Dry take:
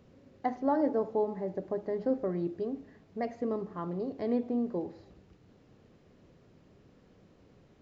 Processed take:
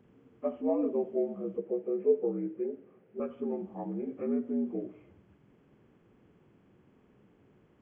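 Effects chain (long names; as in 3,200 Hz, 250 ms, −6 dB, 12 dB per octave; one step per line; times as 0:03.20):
partials spread apart or drawn together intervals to 77%
0:01.57–0:03.20: loudspeaker in its box 150–2,800 Hz, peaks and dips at 260 Hz −9 dB, 440 Hz +9 dB, 1,100 Hz −9 dB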